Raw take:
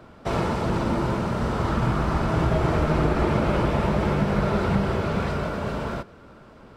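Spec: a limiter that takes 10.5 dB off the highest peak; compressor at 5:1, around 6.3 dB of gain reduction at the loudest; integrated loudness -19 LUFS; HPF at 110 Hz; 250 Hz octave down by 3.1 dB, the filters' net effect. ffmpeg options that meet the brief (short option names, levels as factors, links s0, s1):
-af "highpass=110,equalizer=f=250:t=o:g=-4,acompressor=threshold=0.0447:ratio=5,volume=7.08,alimiter=limit=0.299:level=0:latency=1"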